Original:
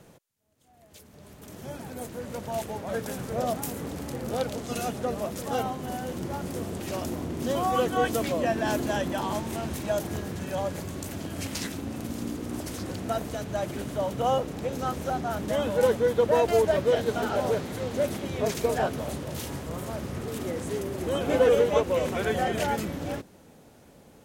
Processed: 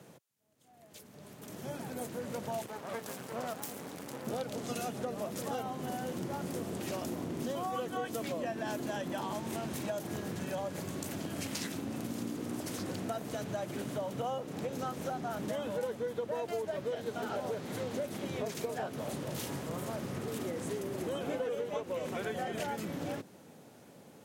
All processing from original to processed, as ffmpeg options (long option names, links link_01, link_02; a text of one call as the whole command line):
ffmpeg -i in.wav -filter_complex "[0:a]asettb=1/sr,asplit=3[link_01][link_02][link_03];[link_01]atrim=end=2.664[link_04];[link_02]atrim=start=2.66:end=4.27,asetpts=PTS-STARTPTS,afade=type=in:duration=0.004:curve=qsin,afade=type=out:start_time=1.606:duration=0.004:curve=qsin,lowshelf=frequency=230:gain=-7.5,aeval=exprs='max(val(0),0)':channel_layout=same[link_05];[link_03]atrim=start=4.266[link_06];[link_04][link_05]acrossfade=duration=0.004:curve1=hsin:curve2=qsin[link_07];[link_07][link_06]acrossfade=duration=0.004:curve1=qsin:curve2=hsin,highpass=frequency=110:width=0.5412,highpass=frequency=110:width=1.3066,acompressor=threshold=-32dB:ratio=6,volume=-1.5dB" out.wav